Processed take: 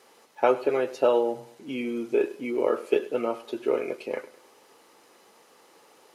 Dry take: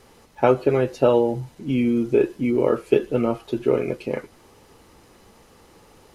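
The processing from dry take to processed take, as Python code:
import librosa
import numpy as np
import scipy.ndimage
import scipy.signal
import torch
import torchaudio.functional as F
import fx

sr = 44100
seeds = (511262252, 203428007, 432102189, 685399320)

y = scipy.signal.sosfilt(scipy.signal.butter(2, 400.0, 'highpass', fs=sr, output='sos'), x)
y = fx.echo_feedback(y, sr, ms=102, feedback_pct=38, wet_db=-18)
y = F.gain(torch.from_numpy(y), -2.5).numpy()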